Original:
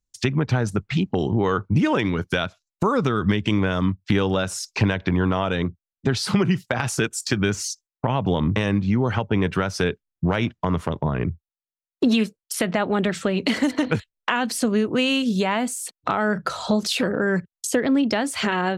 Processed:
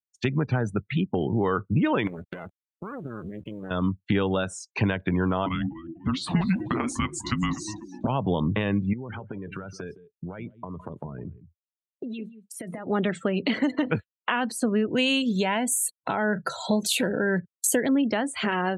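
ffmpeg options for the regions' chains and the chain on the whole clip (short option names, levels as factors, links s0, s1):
-filter_complex "[0:a]asettb=1/sr,asplit=3[s0][s1][s2];[s0]atrim=end=2.074[s3];[s1]atrim=start=2.07:end=3.71,asetpts=PTS-STARTPTS,afade=t=in:d=0.004:c=qsin,afade=t=out:st=1.636:d=0.004:c=qsin,lowpass=f=1400:p=1,acompressor=threshold=0.0708:ratio=20:attack=3.2:release=140:knee=1:detection=peak,acrusher=bits=4:dc=4:mix=0:aa=0.000001[s4];[s2]atrim=start=3.706[s5];[s3][s4]acrossfade=d=0.004:c1=hsin:c2=qsin[s6];[s6][s5]acrossfade=d=0.004:c1=qsin:c2=hsin,asettb=1/sr,asplit=3[s7][s8][s9];[s7]atrim=end=5.464[s10];[s8]atrim=start=5.46:end=8.07,asetpts=PTS-STARTPTS,afade=t=in:d=0.004:c=qsin,afade=t=out:st=2.606:d=0.004:c=qsin,bandreject=f=880:w=14,asplit=7[s11][s12][s13][s14][s15][s16][s17];[s12]adelay=247,afreqshift=-140,volume=0.251[s18];[s13]adelay=494,afreqshift=-280,volume=0.138[s19];[s14]adelay=741,afreqshift=-420,volume=0.0759[s20];[s15]adelay=988,afreqshift=-560,volume=0.0417[s21];[s16]adelay=1235,afreqshift=-700,volume=0.0229[s22];[s17]adelay=1482,afreqshift=-840,volume=0.0126[s23];[s11][s18][s19][s20][s21][s22][s23]amix=inputs=7:normalize=0,atrim=end_sample=115101,afreqshift=-370[s24];[s9]atrim=start=8.066[s25];[s10][s24]acrossfade=d=0.004:c1=hsin:c2=qsin[s26];[s26][s25]acrossfade=d=0.004:c1=qsin:c2=hsin,asettb=1/sr,asplit=3[s27][s28][s29];[s27]atrim=end=8.934[s30];[s28]atrim=start=8.93:end=12.87,asetpts=PTS-STARTPTS,afade=t=in:d=0.004:c=qsin,afade=t=out:st=3.936:d=0.004:c=qsin,acompressor=threshold=0.0447:ratio=20:attack=3.2:release=140:knee=1:detection=peak,aecho=1:1:163:0.266,atrim=end_sample=173754[s31];[s29]atrim=start=12.866[s32];[s30][s31]acrossfade=d=0.004:c1=hsin:c2=qsin[s33];[s33][s32]acrossfade=d=0.004:c1=qsin:c2=hsin,asettb=1/sr,asplit=3[s34][s35][s36];[s34]atrim=end=14.884[s37];[s35]atrim=start=14.88:end=17.89,asetpts=PTS-STARTPTS,afade=t=in:d=0.004:c=qsin,afade=t=out:st=3.006:d=0.004:c=qsin,asuperstop=centerf=1200:order=4:qfactor=5.2,aemphasis=mode=production:type=50kf[s38];[s36]atrim=start=17.886[s39];[s37][s38]acrossfade=d=0.004:c1=hsin:c2=qsin[s40];[s40][s39]acrossfade=d=0.004:c1=qsin:c2=hsin,afftdn=nr=26:nf=-34,highpass=92,equalizer=f=5200:w=4:g=-12.5,volume=0.708"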